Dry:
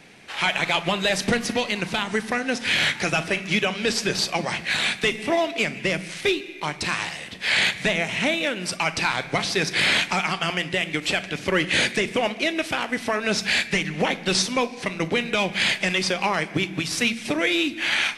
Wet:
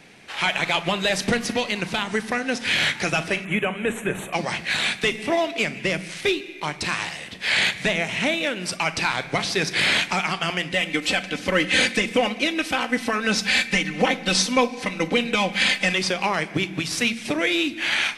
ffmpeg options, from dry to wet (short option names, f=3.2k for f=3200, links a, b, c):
-filter_complex "[0:a]asettb=1/sr,asplit=3[a][b][c];[a]atrim=end=3.454[d];[b]atrim=start=3.45:end=4.33,asetpts=PTS-STARTPTS,afade=t=in:d=0.004:c=qsin,afade=t=out:st=0.876:d=0.004:c=qsin,asuperstop=centerf=4900:order=4:qfactor=0.79[e];[c]atrim=start=4.326[f];[d][e]acrossfade=d=0.004:c1=hsin:c2=qsin[g];[g][f]acrossfade=d=0.004:c1=qsin:c2=hsin,asettb=1/sr,asplit=3[h][i][j];[h]atrim=end=10.714[k];[i]atrim=start=10.71:end=15.94,asetpts=PTS-STARTPTS,afade=t=in:d=0.004:c=qsin,afade=t=out:st=5.226:d=0.004:c=qsin,aecho=1:1:3.9:0.68,atrim=end_sample=230643[l];[j]atrim=start=15.936[m];[k][l]acrossfade=d=0.004:c1=hsin:c2=qsin[n];[n][m]acrossfade=d=0.004:c1=qsin:c2=hsin"